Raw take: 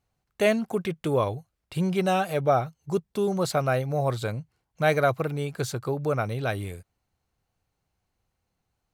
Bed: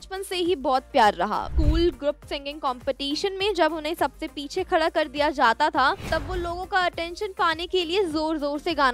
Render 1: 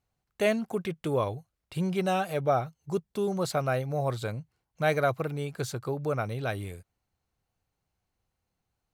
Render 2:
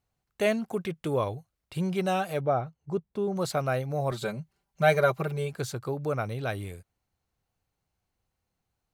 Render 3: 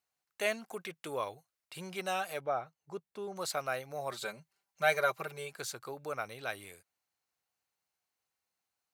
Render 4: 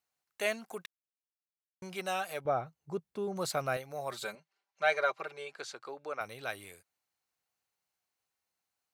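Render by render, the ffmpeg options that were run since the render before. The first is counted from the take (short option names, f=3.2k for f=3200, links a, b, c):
-af "volume=-3.5dB"
-filter_complex "[0:a]asettb=1/sr,asplit=3[a][b][c];[a]atrim=end=2.414[d];[b]atrim=start=2.41:end=3.36,asetpts=PTS-STARTPTS,afade=t=in:d=0.004:c=qsin,afade=t=out:st=0.946:d=0.004:c=qsin,lowpass=f=1.4k:p=1[e];[c]atrim=start=3.356[f];[d][e]acrossfade=d=0.004:c1=hsin:c2=qsin[g];[g][f]acrossfade=d=0.004:c1=qsin:c2=hsin,asettb=1/sr,asplit=3[h][i][j];[h]atrim=end=4.114[k];[i]atrim=start=4.11:end=5.53,asetpts=PTS-STARTPTS,afade=t=in:d=0.004:c=qsin,afade=t=out:st=1.416:d=0.004:c=qsin,aecho=1:1:5.1:0.91,atrim=end_sample=62622[l];[j]atrim=start=5.526[m];[k][l]acrossfade=d=0.004:c1=hsin:c2=qsin[n];[n][m]acrossfade=d=0.004:c1=qsin:c2=hsin"
-af "highpass=f=1.4k:p=1,equalizer=f=3.3k:t=o:w=0.42:g=-2.5"
-filter_complex "[0:a]asettb=1/sr,asplit=3[a][b][c];[a]atrim=end=2.454[d];[b]atrim=start=2.45:end=3.77,asetpts=PTS-STARTPTS,afade=t=in:d=0.004:c=qsin,afade=t=out:st=1.316:d=0.004:c=qsin,lowshelf=f=350:g=11.5[e];[c]atrim=start=3.766[f];[d][e]acrossfade=d=0.004:c1=hsin:c2=qsin[g];[g][f]acrossfade=d=0.004:c1=qsin:c2=hsin,asettb=1/sr,asplit=3[h][i][j];[h]atrim=end=4.354[k];[i]atrim=start=4.35:end=6.21,asetpts=PTS-STARTPTS,afade=t=in:d=0.004:c=qsin,afade=t=out:st=1.856:d=0.004:c=qsin,highpass=300,lowpass=4.9k[l];[j]atrim=start=6.206[m];[k][l]acrossfade=d=0.004:c1=hsin:c2=qsin[n];[n][m]acrossfade=d=0.004:c1=qsin:c2=hsin,asplit=3[o][p][q];[o]atrim=end=0.86,asetpts=PTS-STARTPTS,afade=t=out:st=0.856:d=0.004:c=hsin[r];[p]atrim=start=0.86:end=1.82,asetpts=PTS-STARTPTS,volume=0[s];[q]atrim=start=1.82,asetpts=PTS-STARTPTS,afade=t=in:d=0.004:c=hsin[t];[r][s][t]concat=n=3:v=0:a=1"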